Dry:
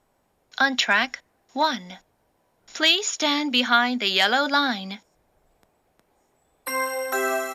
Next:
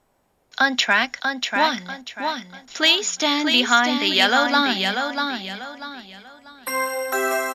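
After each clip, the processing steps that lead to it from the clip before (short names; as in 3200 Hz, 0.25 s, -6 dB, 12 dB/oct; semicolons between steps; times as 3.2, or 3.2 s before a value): feedback echo 0.641 s, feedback 31%, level -5.5 dB; gain +2 dB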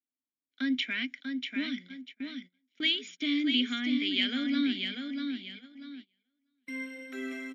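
vowel filter i; gate -46 dBFS, range -24 dB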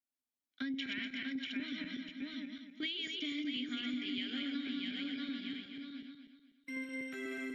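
regenerating reverse delay 0.123 s, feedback 56%, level -3.5 dB; compressor 6:1, threshold -32 dBFS, peak gain reduction 10 dB; gain -4 dB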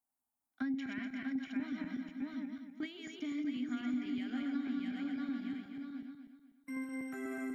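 EQ curve 240 Hz 0 dB, 520 Hz -7 dB, 790 Hz +9 dB, 3400 Hz -20 dB, 9000 Hz +1 dB; gain +4 dB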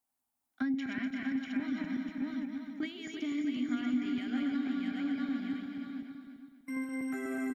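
echo 0.337 s -8.5 dB; gain +4 dB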